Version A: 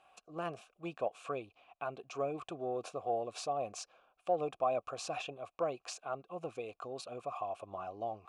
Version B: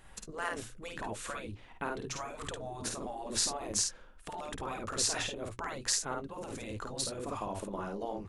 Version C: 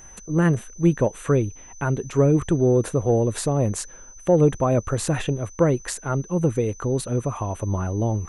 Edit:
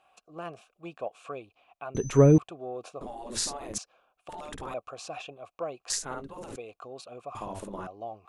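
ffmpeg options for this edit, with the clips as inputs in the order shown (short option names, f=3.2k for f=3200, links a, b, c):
-filter_complex "[1:a]asplit=4[a][b][c][d];[0:a]asplit=6[e][f][g][h][i][j];[e]atrim=end=1.952[k];[2:a]atrim=start=1.948:end=2.382[l];[f]atrim=start=2.378:end=3.012[m];[a]atrim=start=3.008:end=3.782[n];[g]atrim=start=3.778:end=4.292[o];[b]atrim=start=4.288:end=4.742[p];[h]atrim=start=4.738:end=5.902[q];[c]atrim=start=5.898:end=6.562[r];[i]atrim=start=6.558:end=7.352[s];[d]atrim=start=7.348:end=7.872[t];[j]atrim=start=7.868[u];[k][l]acrossfade=d=0.004:c1=hsin:c2=hsin[v];[v][m]acrossfade=d=0.004:c1=hsin:c2=hsin[w];[w][n]acrossfade=d=0.004:c1=hsin:c2=hsin[x];[x][o]acrossfade=d=0.004:c1=hsin:c2=hsin[y];[y][p]acrossfade=d=0.004:c1=hsin:c2=hsin[z];[z][q]acrossfade=d=0.004:c1=hsin:c2=hsin[aa];[aa][r]acrossfade=d=0.004:c1=hsin:c2=hsin[ab];[ab][s]acrossfade=d=0.004:c1=hsin:c2=hsin[ac];[ac][t]acrossfade=d=0.004:c1=hsin:c2=hsin[ad];[ad][u]acrossfade=d=0.004:c1=hsin:c2=hsin"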